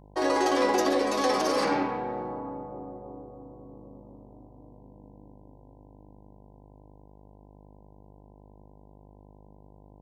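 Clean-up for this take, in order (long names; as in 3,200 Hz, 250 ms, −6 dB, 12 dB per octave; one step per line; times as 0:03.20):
hum removal 50.6 Hz, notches 20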